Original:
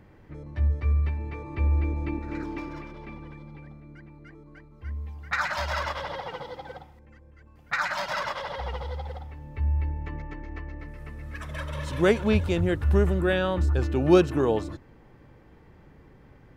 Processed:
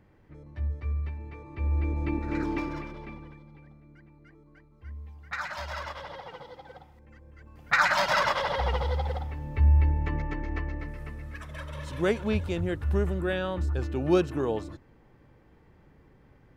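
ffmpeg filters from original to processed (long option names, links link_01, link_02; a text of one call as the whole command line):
ffmpeg -i in.wav -af "volume=17dB,afade=type=in:start_time=1.56:duration=0.96:silence=0.266073,afade=type=out:start_time=2.52:duration=0.91:silence=0.266073,afade=type=in:start_time=6.71:duration=1.15:silence=0.237137,afade=type=out:start_time=10.57:duration=0.89:silence=0.298538" out.wav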